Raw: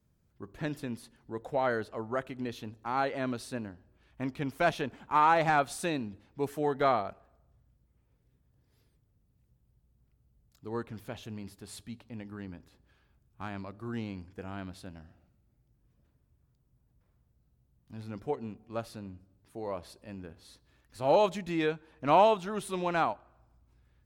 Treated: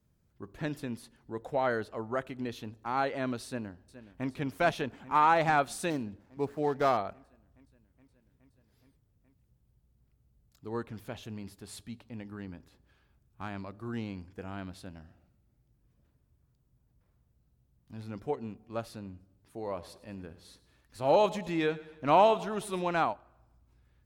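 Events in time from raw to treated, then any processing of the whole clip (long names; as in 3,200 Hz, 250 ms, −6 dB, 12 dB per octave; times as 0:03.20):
0:03.46–0:04.29: delay throw 420 ms, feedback 80%, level −14 dB
0:05.90–0:06.97: running median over 15 samples
0:19.59–0:22.82: repeating echo 107 ms, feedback 49%, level −18 dB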